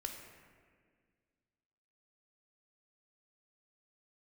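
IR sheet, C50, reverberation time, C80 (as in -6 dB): 4.5 dB, 1.8 s, 6.0 dB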